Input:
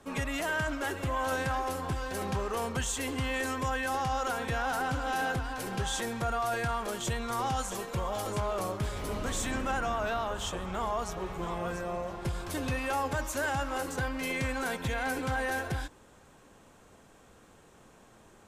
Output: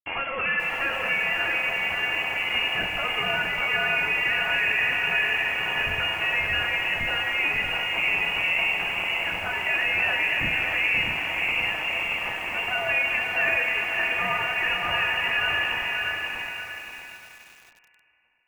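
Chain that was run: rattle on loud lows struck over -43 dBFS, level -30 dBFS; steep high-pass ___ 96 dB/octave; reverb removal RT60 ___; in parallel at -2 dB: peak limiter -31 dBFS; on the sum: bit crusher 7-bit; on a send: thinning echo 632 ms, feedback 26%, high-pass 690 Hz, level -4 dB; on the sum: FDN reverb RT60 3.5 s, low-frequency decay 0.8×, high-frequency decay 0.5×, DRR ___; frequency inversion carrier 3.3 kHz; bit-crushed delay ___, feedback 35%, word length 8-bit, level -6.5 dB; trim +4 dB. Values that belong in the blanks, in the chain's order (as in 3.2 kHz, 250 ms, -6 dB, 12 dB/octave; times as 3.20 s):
430 Hz, 1.4 s, 2 dB, 533 ms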